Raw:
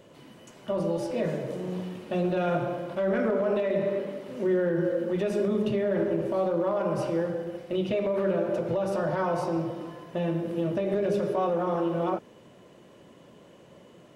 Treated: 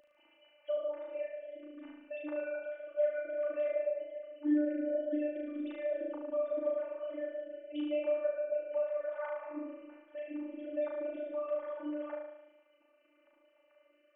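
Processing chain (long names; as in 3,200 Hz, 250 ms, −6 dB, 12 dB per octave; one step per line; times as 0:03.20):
three sine waves on the formant tracks
phases set to zero 296 Hz
flutter between parallel walls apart 6.3 metres, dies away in 0.88 s
level −7.5 dB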